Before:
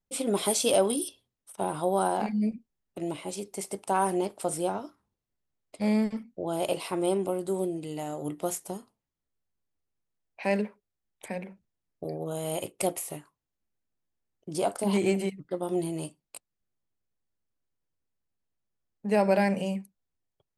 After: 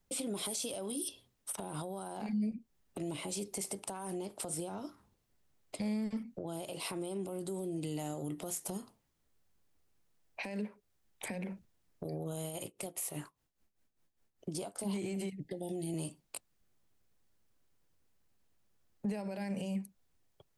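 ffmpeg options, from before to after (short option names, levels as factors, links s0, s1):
-filter_complex "[0:a]asettb=1/sr,asplit=3[s0][s1][s2];[s0]atrim=end=12.434[s3];[s1]atrim=start=12.43:end=14.77,asetpts=PTS-STARTPTS,afade=t=in:d=0.004:c=qsin,afade=t=out:st=2.336:d=0.004:c=qsin,tremolo=f=5:d=0.8[s4];[s2]atrim=start=14.766[s5];[s3][s4]acrossfade=d=0.004:c1=hsin:c2=qsin[s6];[s6][s5]acrossfade=d=0.004:c1=qsin:c2=hsin,asettb=1/sr,asplit=3[s7][s8][s9];[s7]atrim=end=15.324[s10];[s8]atrim=start=15.32:end=15.94,asetpts=PTS-STARTPTS,afade=t=in:d=0.004:c=qsin,afade=t=out:st=0.616:d=0.004:c=qsin,asuperstop=centerf=1200:order=20:qfactor=1.5[s11];[s9]atrim=start=15.936[s12];[s10][s11]acrossfade=d=0.004:c1=hsin:c2=qsin[s13];[s13][s12]acrossfade=d=0.004:c1=qsin:c2=hsin,acompressor=threshold=0.01:ratio=6,alimiter=level_in=4.47:limit=0.0631:level=0:latency=1:release=37,volume=0.224,acrossover=split=270|3000[s14][s15][s16];[s15]acompressor=threshold=0.00158:ratio=2[s17];[s14][s17][s16]amix=inputs=3:normalize=0,volume=3.16"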